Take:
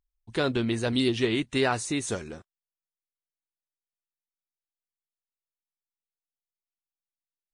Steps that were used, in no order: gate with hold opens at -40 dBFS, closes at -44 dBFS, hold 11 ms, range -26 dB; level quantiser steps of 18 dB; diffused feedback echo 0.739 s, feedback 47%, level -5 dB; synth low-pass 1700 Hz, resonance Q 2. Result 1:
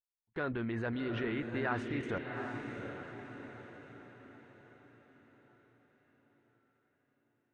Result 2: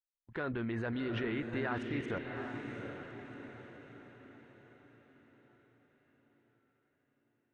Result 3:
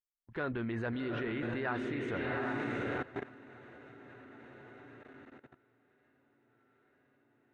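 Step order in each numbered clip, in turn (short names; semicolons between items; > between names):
level quantiser > synth low-pass > gate with hold > diffused feedback echo; synth low-pass > gate with hold > level quantiser > diffused feedback echo; gate with hold > diffused feedback echo > level quantiser > synth low-pass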